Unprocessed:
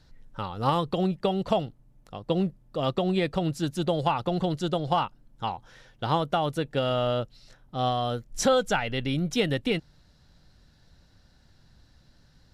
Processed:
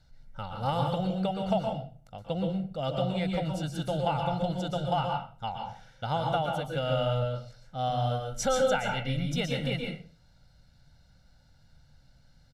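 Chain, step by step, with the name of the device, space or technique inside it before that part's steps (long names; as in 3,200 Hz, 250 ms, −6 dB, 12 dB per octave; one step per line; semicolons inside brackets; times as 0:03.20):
microphone above a desk (comb filter 1.4 ms, depth 70%; convolution reverb RT60 0.40 s, pre-delay 115 ms, DRR 1.5 dB)
level −7 dB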